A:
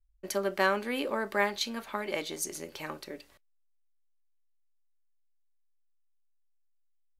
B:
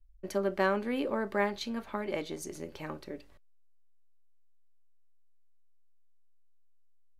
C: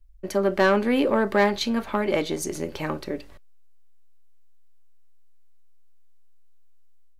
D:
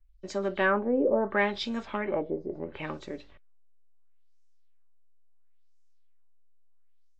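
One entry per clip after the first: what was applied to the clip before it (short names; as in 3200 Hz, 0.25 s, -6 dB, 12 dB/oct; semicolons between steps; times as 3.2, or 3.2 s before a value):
tilt -2.5 dB/oct; gain -2.5 dB
AGC gain up to 4.5 dB; soft clip -17.5 dBFS, distortion -16 dB; gain +7 dB
nonlinear frequency compression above 3000 Hz 1.5:1; LFO low-pass sine 0.73 Hz 500–6500 Hz; gain -8 dB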